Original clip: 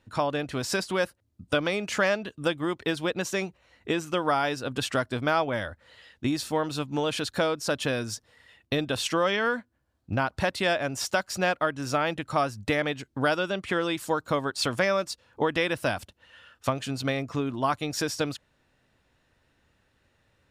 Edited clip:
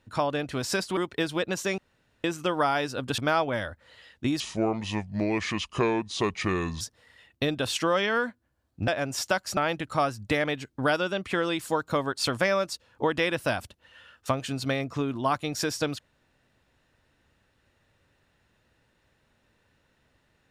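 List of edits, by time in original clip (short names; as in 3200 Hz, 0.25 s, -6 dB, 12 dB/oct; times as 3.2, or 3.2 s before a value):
0.97–2.65 cut
3.46–3.92 room tone
4.86–5.18 cut
6.4–8.11 speed 71%
10.18–10.71 cut
11.4–11.95 cut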